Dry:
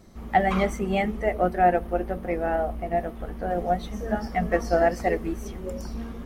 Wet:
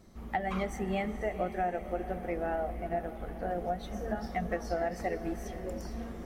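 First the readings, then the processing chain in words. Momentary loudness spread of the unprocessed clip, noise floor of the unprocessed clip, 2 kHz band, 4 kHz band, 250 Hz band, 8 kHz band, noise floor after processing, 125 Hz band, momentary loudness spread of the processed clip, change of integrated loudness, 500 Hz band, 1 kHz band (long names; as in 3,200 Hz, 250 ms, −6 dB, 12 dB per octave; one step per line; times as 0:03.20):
12 LU, −39 dBFS, −9.0 dB, −8.0 dB, −8.0 dB, can't be measured, −43 dBFS, −8.0 dB, 6 LU, −9.0 dB, −9.0 dB, −10.0 dB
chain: downward compressor, threshold −23 dBFS, peak gain reduction 9 dB
on a send: feedback delay with all-pass diffusion 469 ms, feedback 56%, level −12.5 dB
on the sum: level −5.5 dB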